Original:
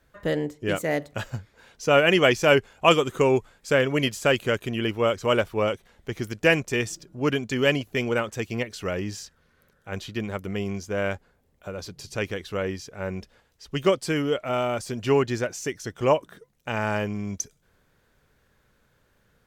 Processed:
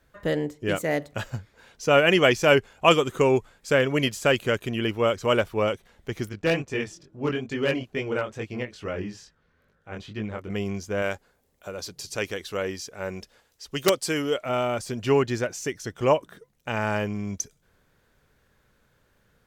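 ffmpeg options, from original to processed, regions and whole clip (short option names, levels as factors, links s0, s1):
-filter_complex "[0:a]asettb=1/sr,asplit=3[s0][s1][s2];[s0]atrim=end=6.294[s3];[s1]atrim=start=6.29:end=10.5,asetpts=PTS-STARTPTS,afade=t=in:d=0.004:c=qsin,afade=t=out:st=4.206:d=0.004:c=qsin,aemphasis=mode=reproduction:type=50fm,flanger=delay=18.5:depth=6:speed=2.3,volume=6.68,asoftclip=hard,volume=0.15[s4];[s2]atrim=start=10.496[s5];[s3][s4]acrossfade=d=0.004:c1=hsin:c2=qsin[s6];[s6][s5]acrossfade=d=0.004:c1=qsin:c2=hsin,asettb=1/sr,asplit=3[s7][s8][s9];[s7]atrim=end=11.024[s10];[s8]atrim=start=11.02:end=14.46,asetpts=PTS-STARTPTS,afade=t=in:d=0.004:c=qsin,afade=t=out:st=3.436:d=0.004:c=qsin,bass=f=250:g=-6,treble=f=4000:g=6,aeval=exprs='(mod(2.99*val(0)+1,2)-1)/2.99':c=same[s11];[s9]atrim=start=14.456[s12];[s10][s11]acrossfade=d=0.004:c1=hsin:c2=qsin[s13];[s13][s12]acrossfade=d=0.004:c1=qsin:c2=hsin"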